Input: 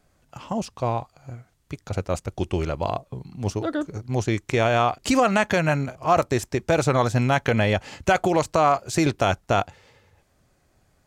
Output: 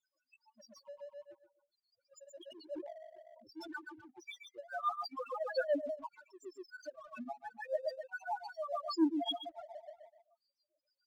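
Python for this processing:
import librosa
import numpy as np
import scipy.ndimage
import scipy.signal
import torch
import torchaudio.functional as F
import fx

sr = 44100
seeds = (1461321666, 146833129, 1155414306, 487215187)

y = fx.spec_dropout(x, sr, seeds[0], share_pct=49)
y = fx.highpass(y, sr, hz=970.0, slope=6)
y = fx.peak_eq(y, sr, hz=4800.0, db=10.5, octaves=0.52)
y = fx.echo_feedback(y, sr, ms=124, feedback_pct=50, wet_db=-8.0)
y = fx.leveller(y, sr, passes=1, at=(7.78, 8.39))
y = y + 0.51 * np.pad(y, (int(3.4 * sr / 1000.0), 0))[:len(y)]
y = fx.auto_swell(y, sr, attack_ms=487.0)
y = fx.spec_topn(y, sr, count=2)
y = fx.leveller(y, sr, passes=1)
y = fx.tremolo_shape(y, sr, shape='triangle', hz=7.0, depth_pct=95)
y = fx.sustainer(y, sr, db_per_s=41.0, at=(2.45, 3.77), fade=0.02)
y = y * 10.0 ** (3.0 / 20.0)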